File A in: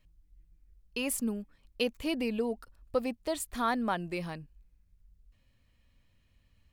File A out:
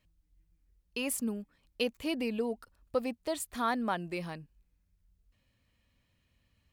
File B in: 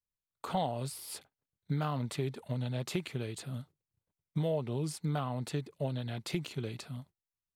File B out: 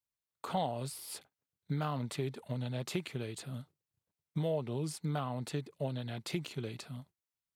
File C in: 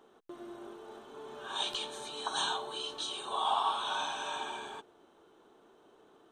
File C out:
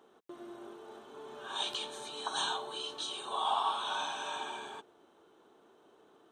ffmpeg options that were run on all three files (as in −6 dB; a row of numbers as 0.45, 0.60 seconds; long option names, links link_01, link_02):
-af "highpass=frequency=86:poles=1,volume=-1dB"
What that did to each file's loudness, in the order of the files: −1.0, −1.5, −1.0 LU